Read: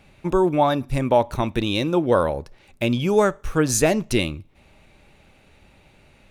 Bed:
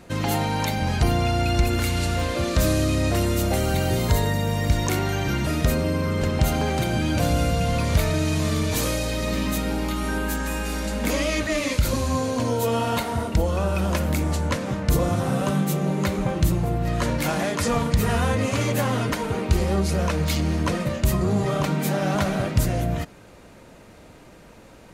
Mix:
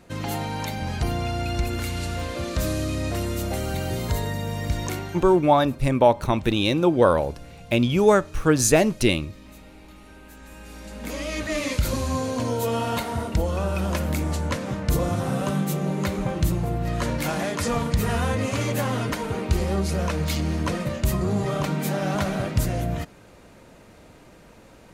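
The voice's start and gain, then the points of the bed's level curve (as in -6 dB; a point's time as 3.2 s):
4.90 s, +1.0 dB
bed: 4.9 s -5 dB
5.55 s -22 dB
10.19 s -22 dB
11.57 s -2 dB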